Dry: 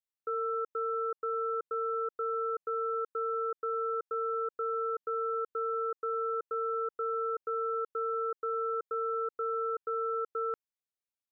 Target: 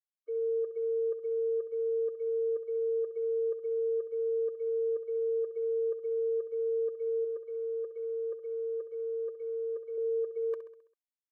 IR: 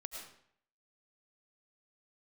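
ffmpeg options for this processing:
-filter_complex "[0:a]agate=range=-32dB:threshold=-34dB:ratio=16:detection=peak,asettb=1/sr,asplit=3[link_01][link_02][link_03];[link_01]atrim=end=7.244[link_04];[link_02]atrim=start=7.24:end=9.98,asetpts=PTS-STARTPTS,afade=type=in:duration=0.004:curve=qsin,afade=type=out:start_time=2.736:duration=0.004:curve=qsin,bandreject=frequency=440:width=12[link_05];[link_03]atrim=start=9.976[link_06];[link_04][link_05]acrossfade=duration=0.004:curve1=hsin:curve2=qsin[link_07];[link_07][link_06]acrossfade=duration=0.004:curve1=qsin:curve2=hsin,aecho=1:1:66|132|198|264|330|396:0.251|0.133|0.0706|0.0374|0.0198|0.0105,afftfilt=real='re*eq(mod(floor(b*sr/1024/310),2),1)':imag='im*eq(mod(floor(b*sr/1024/310),2),1)':win_size=1024:overlap=0.75,volume=2.5dB"

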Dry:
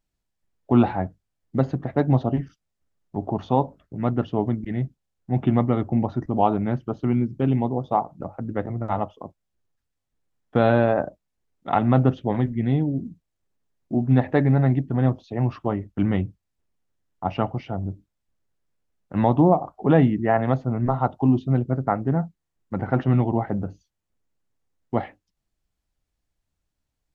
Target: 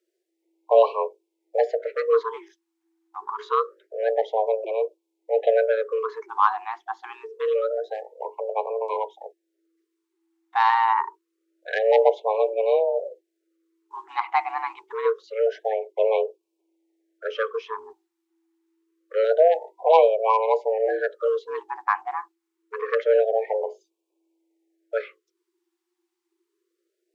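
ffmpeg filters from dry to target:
ffmpeg -i in.wav -af "aeval=exprs='0.668*(cos(1*acos(clip(val(0)/0.668,-1,1)))-cos(1*PI/2))+0.0944*(cos(3*acos(clip(val(0)/0.668,-1,1)))-cos(3*PI/2))+0.0299*(cos(5*acos(clip(val(0)/0.668,-1,1)))-cos(5*PI/2))':channel_layout=same,afreqshift=330,afftfilt=real='re*(1-between(b*sr/1024,500*pow(1600/500,0.5+0.5*sin(2*PI*0.26*pts/sr))/1.41,500*pow(1600/500,0.5+0.5*sin(2*PI*0.26*pts/sr))*1.41))':imag='im*(1-between(b*sr/1024,500*pow(1600/500,0.5+0.5*sin(2*PI*0.26*pts/sr))/1.41,500*pow(1600/500,0.5+0.5*sin(2*PI*0.26*pts/sr))*1.41))':win_size=1024:overlap=0.75,volume=3dB" out.wav

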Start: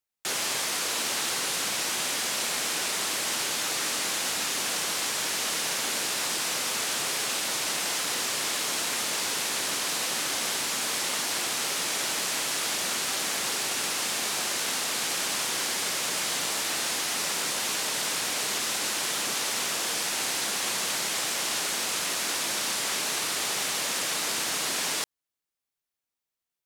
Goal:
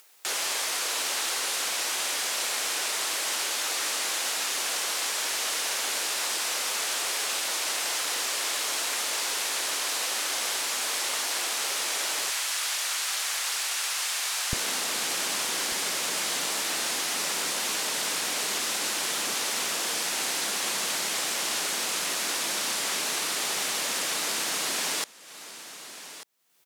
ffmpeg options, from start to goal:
ffmpeg -i in.wav -af "asetnsamples=nb_out_samples=441:pad=0,asendcmd='12.3 highpass f 940;14.53 highpass f 170',highpass=420,aecho=1:1:1192:0.075,acompressor=mode=upward:threshold=-33dB:ratio=2.5" out.wav

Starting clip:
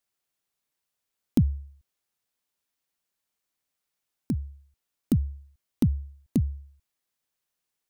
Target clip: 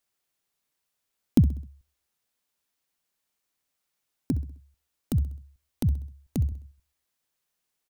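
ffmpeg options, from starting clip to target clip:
ffmpeg -i in.wav -filter_complex "[0:a]asettb=1/sr,asplit=3[link_01][link_02][link_03];[link_01]atrim=end=4.314[link_04];[link_02]atrim=start=4.31:end=6.52,asetpts=PTS-STARTPTS,afade=type=in:duration=0.004:curve=qsin,afade=type=out:start_time=2.206:duration=0.004:curve=qsin,acrossover=split=150|3000[link_05][link_06][link_07];[link_06]acompressor=threshold=-37dB:ratio=6[link_08];[link_05][link_08][link_07]amix=inputs=3:normalize=0[link_09];[link_03]atrim=start=6.516[link_10];[link_04][link_09]acrossfade=duration=0.004:curve1=hsin:curve2=qsin[link_11];[link_11][link_10]acrossfade=duration=0.004:curve1=qsin:curve2=hsin,aecho=1:1:65|130|195|260:0.141|0.0636|0.0286|0.0129,volume=2.5dB" out.wav

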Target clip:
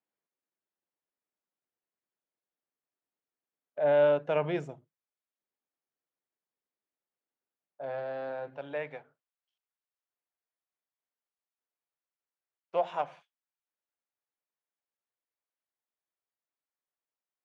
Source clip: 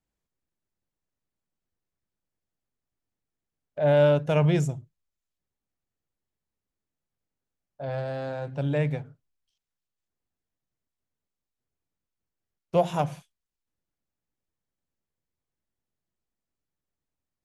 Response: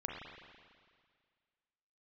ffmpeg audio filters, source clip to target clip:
-af "asetnsamples=nb_out_samples=441:pad=0,asendcmd='8.57 highpass f 610',highpass=350,lowpass=2500,volume=-2.5dB"

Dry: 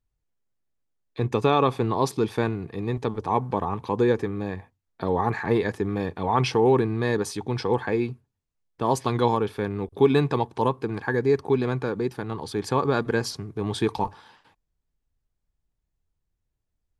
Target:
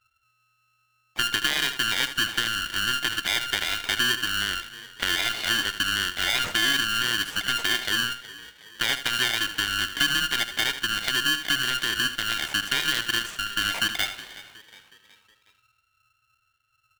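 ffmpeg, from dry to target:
ffmpeg -i in.wav -filter_complex "[0:a]afftfilt=real='real(if(lt(b,920),b+92*(1-2*mod(floor(b/92),2)),b),0)':imag='imag(if(lt(b,920),b+92*(1-2*mod(floor(b/92),2)),b),0)':win_size=2048:overlap=0.75,acompressor=threshold=-29dB:ratio=4,highshelf=frequency=3800:width_type=q:width=1.5:gain=-8,asplit=2[link_01][link_02];[link_02]aecho=0:1:77|154:0.266|0.0426[link_03];[link_01][link_03]amix=inputs=2:normalize=0,acontrast=89,asplit=2[link_04][link_05];[link_05]asplit=4[link_06][link_07][link_08][link_09];[link_06]adelay=367,afreqshift=53,volume=-18dB[link_10];[link_07]adelay=734,afreqshift=106,volume=-24.2dB[link_11];[link_08]adelay=1101,afreqshift=159,volume=-30.4dB[link_12];[link_09]adelay=1468,afreqshift=212,volume=-36.6dB[link_13];[link_10][link_11][link_12][link_13]amix=inputs=4:normalize=0[link_14];[link_04][link_14]amix=inputs=2:normalize=0,aeval=exprs='val(0)*sgn(sin(2*PI*700*n/s))':channel_layout=same,volume=-3dB" out.wav

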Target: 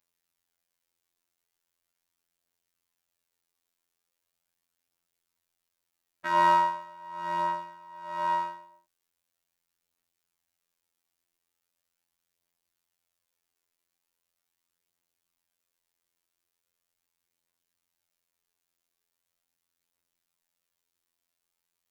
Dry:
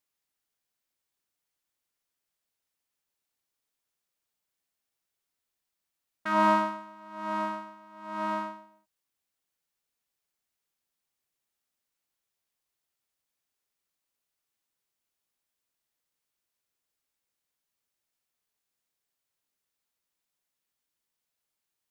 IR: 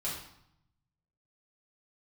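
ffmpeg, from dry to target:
-af "aphaser=in_gain=1:out_gain=1:delay=3.1:decay=0.26:speed=0.4:type=triangular,afftfilt=real='hypot(re,im)*cos(PI*b)':imag='0':win_size=2048:overlap=0.75,volume=5dB"

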